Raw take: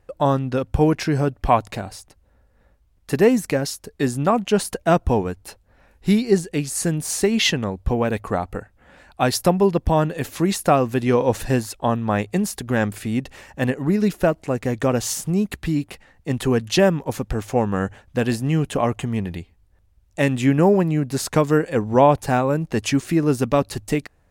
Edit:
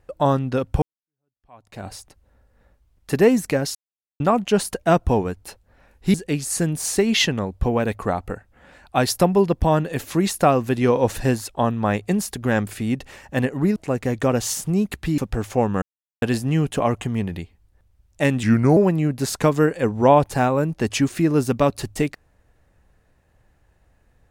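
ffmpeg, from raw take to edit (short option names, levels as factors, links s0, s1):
-filter_complex "[0:a]asplit=11[s0][s1][s2][s3][s4][s5][s6][s7][s8][s9][s10];[s0]atrim=end=0.82,asetpts=PTS-STARTPTS,afade=t=out:st=0.816:d=0.004:c=hsin[s11];[s1]atrim=start=0.82:end=3.75,asetpts=PTS-STARTPTS,afade=t=in:d=1.04:c=exp,afade=t=out:st=2.926:d=0.004:c=hsin[s12];[s2]atrim=start=3.75:end=4.2,asetpts=PTS-STARTPTS,volume=0[s13];[s3]atrim=start=4.2:end=6.142,asetpts=PTS-STARTPTS,afade=t=in:d=0.004:c=hsin[s14];[s4]atrim=start=6.388:end=14.012[s15];[s5]atrim=start=14.358:end=15.782[s16];[s6]atrim=start=17.158:end=17.8,asetpts=PTS-STARTPTS,afade=t=out:st=0.638:d=0.004:c=hsin[s17];[s7]atrim=start=17.8:end=18.2,asetpts=PTS-STARTPTS,volume=0[s18];[s8]atrim=start=18.2:end=20.414,asetpts=PTS-STARTPTS,afade=t=in:d=0.004:c=hsin[s19];[s9]atrim=start=20.41:end=20.69,asetpts=PTS-STARTPTS,asetrate=36603,aresample=44100,atrim=end_sample=14877,asetpts=PTS-STARTPTS[s20];[s10]atrim=start=20.686[s21];[s11][s12][s13][s14]concat=n=4:v=0:a=1[s22];[s22][s15]acrossfade=d=0.004:c1=hsin:c2=hsin[s23];[s23][s16]acrossfade=d=0.004:c1=hsin:c2=hsin[s24];[s17][s18][s19]concat=n=3:v=0:a=1[s25];[s24][s25]acrossfade=d=0.004:c1=hsin:c2=hsin[s26];[s26][s20]acrossfade=d=0.004:c1=hsin:c2=hsin[s27];[s27][s21]acrossfade=d=0.004:c1=hsin:c2=hsin"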